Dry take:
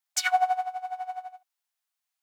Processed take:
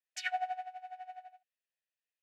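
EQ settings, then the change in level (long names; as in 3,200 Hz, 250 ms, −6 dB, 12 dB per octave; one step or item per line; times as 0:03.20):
formant filter e
linear-phase brick-wall low-pass 14,000 Hz
high-shelf EQ 4,600 Hz +7.5 dB
+5.0 dB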